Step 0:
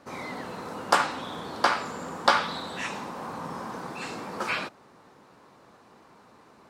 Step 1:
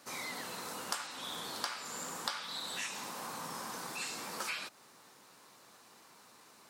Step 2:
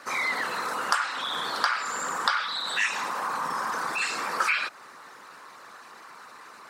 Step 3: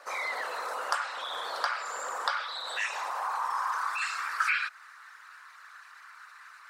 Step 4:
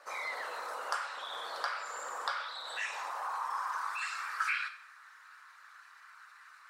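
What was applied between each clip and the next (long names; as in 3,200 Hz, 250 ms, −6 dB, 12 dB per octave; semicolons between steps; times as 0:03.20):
high-pass filter 91 Hz; first-order pre-emphasis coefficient 0.9; downward compressor 5 to 1, threshold −46 dBFS, peak gain reduction 17 dB; level +9.5 dB
spectral envelope exaggerated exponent 1.5; parametric band 1,600 Hz +11.5 dB 1.6 octaves; level +6 dB
high-pass filter sweep 570 Hz → 1,500 Hz, 0:02.80–0:04.36; level −7 dB
dense smooth reverb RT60 0.59 s, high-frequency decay 0.95×, DRR 6.5 dB; level −6 dB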